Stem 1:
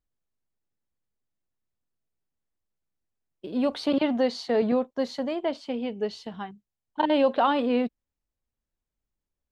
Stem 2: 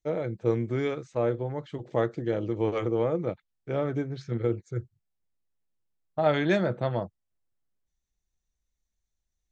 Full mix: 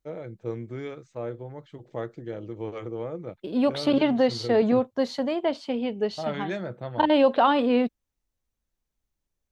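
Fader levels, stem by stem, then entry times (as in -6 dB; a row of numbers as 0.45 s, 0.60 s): +2.5 dB, -7.0 dB; 0.00 s, 0.00 s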